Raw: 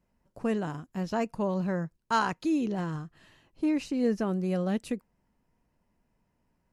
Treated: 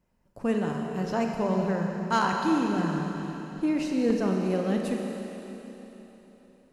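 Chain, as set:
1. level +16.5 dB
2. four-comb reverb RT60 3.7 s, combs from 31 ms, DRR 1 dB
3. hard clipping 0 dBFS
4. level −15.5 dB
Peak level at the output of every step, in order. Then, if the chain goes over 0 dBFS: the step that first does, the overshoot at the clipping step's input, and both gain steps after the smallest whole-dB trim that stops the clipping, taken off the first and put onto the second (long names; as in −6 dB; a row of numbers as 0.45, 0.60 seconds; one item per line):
+1.0, +4.0, 0.0, −15.5 dBFS
step 1, 4.0 dB
step 1 +12.5 dB, step 4 −11.5 dB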